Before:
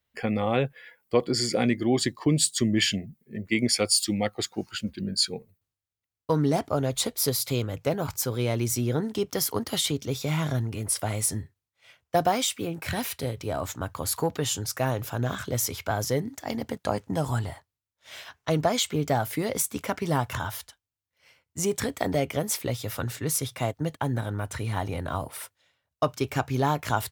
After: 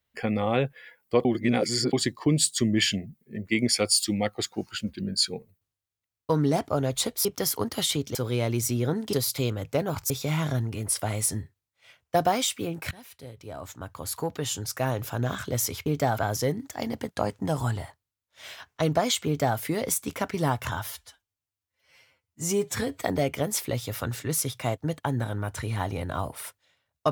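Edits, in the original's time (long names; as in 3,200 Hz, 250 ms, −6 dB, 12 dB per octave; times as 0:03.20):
0:01.25–0:01.93: reverse
0:07.25–0:08.22: swap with 0:09.20–0:10.10
0:12.91–0:15.06: fade in, from −21.5 dB
0:18.94–0:19.26: duplicate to 0:15.86
0:20.55–0:21.98: time-stretch 1.5×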